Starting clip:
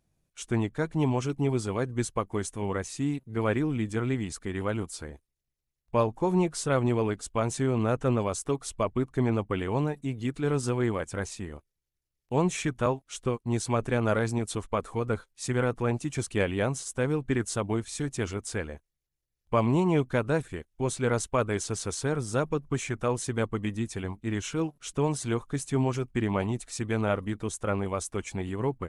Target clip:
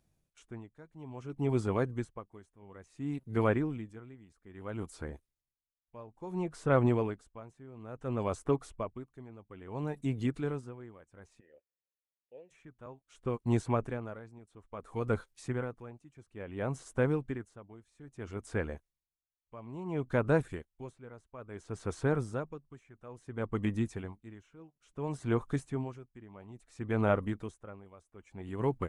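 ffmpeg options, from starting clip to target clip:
-filter_complex "[0:a]asplit=3[a][b][c];[a]afade=t=out:st=11.39:d=0.02[d];[b]asplit=3[e][f][g];[e]bandpass=f=530:t=q:w=8,volume=0dB[h];[f]bandpass=f=1.84k:t=q:w=8,volume=-6dB[i];[g]bandpass=f=2.48k:t=q:w=8,volume=-9dB[j];[h][i][j]amix=inputs=3:normalize=0,afade=t=in:st=11.39:d=0.02,afade=t=out:st=12.5:d=0.02[k];[c]afade=t=in:st=12.5:d=0.02[l];[d][k][l]amix=inputs=3:normalize=0,acrossover=split=2200[m][n];[n]acompressor=threshold=-52dB:ratio=5[o];[m][o]amix=inputs=2:normalize=0,aeval=exprs='val(0)*pow(10,-24*(0.5-0.5*cos(2*PI*0.59*n/s))/20)':c=same"

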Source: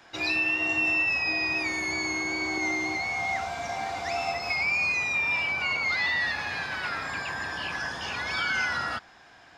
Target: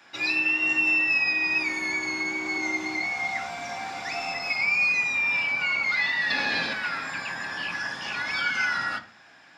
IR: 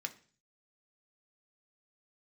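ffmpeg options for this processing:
-filter_complex "[0:a]asettb=1/sr,asplit=3[a][b][c];[a]atrim=end=6.304[d];[b]atrim=start=6.3:end=6.73,asetpts=PTS-STARTPTS,afade=t=in:d=0.004:c=qsin,afade=t=out:st=0.426:d=0.004:c=qsin,equalizer=f=250:t=o:w=1:g=11,equalizer=f=500:t=o:w=1:g=9,equalizer=f=4k:t=o:w=1:g=10[e];[c]atrim=start=6.726[f];[d][e]acrossfade=d=0.004:c1=hsin:c2=qsin[g];[g][f]acrossfade=d=0.004:c1=qsin:c2=hsin[h];[1:a]atrim=start_sample=2205[i];[h][i]afir=irnorm=-1:irlink=0,volume=1.5dB"

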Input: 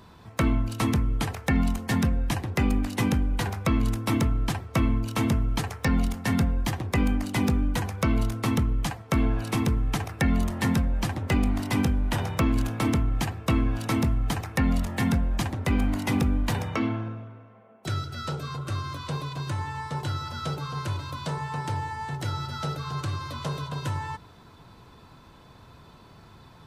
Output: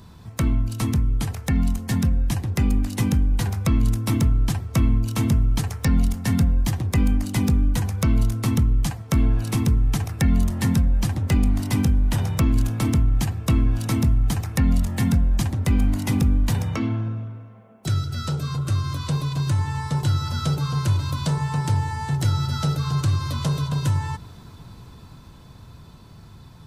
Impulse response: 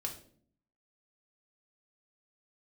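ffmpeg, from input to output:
-filter_complex "[0:a]asplit=2[a][b];[b]acompressor=threshold=-33dB:ratio=6,volume=0dB[c];[a][c]amix=inputs=2:normalize=0,bass=f=250:g=10,treble=f=4k:g=8,dynaudnorm=f=310:g=17:m=6.5dB,volume=-7.5dB"

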